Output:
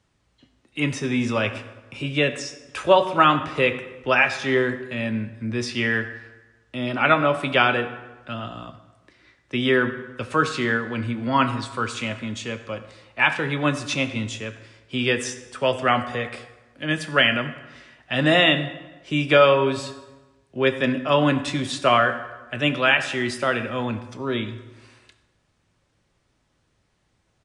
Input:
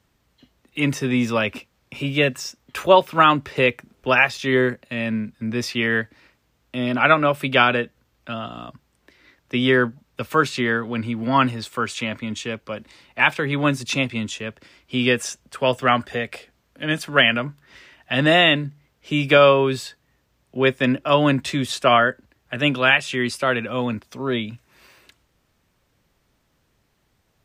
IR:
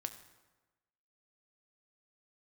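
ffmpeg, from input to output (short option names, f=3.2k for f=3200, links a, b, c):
-filter_complex "[1:a]atrim=start_sample=2205[a];[0:a][a]afir=irnorm=-1:irlink=0,aresample=22050,aresample=44100"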